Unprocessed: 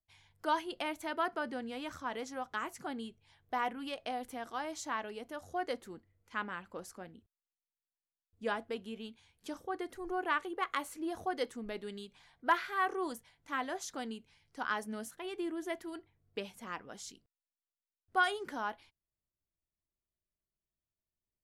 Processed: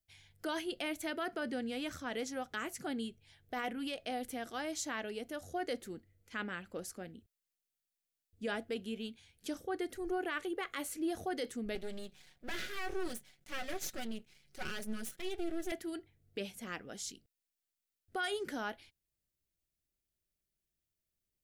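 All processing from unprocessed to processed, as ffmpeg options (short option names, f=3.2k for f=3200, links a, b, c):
-filter_complex "[0:a]asettb=1/sr,asplit=3[a][b][c];[a]atrim=end=11.754[d];[b]atrim=start=11.75:end=15.72,asetpts=PTS-STARTPTS,afade=t=in:d=0.004:c=qsin,afade=t=out:st=3.966:d=0.004:c=qsin,aecho=1:1:5.4:0.88,atrim=end_sample=175077,aeval=exprs='max(val(0),0)':c=same[e];[c]atrim=start=15.716[f];[d][e]acrossfade=d=0.004:c1=hsin:c2=qsin[g];[g][f]acrossfade=d=0.004:c1=qsin:c2=hsin,equalizer=f=1k:w=2.2:g=-13.5,alimiter=level_in=7.5dB:limit=-24dB:level=0:latency=1:release=16,volume=-7.5dB,highshelf=f=8.6k:g=4,volume=3.5dB"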